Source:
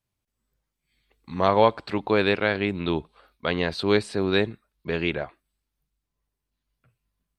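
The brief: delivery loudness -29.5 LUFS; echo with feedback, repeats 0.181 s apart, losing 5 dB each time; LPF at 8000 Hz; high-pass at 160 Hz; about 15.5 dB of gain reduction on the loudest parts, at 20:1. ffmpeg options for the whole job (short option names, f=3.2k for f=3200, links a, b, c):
-af "highpass=160,lowpass=8k,acompressor=threshold=-28dB:ratio=20,aecho=1:1:181|362|543|724|905|1086|1267:0.562|0.315|0.176|0.0988|0.0553|0.031|0.0173,volume=4dB"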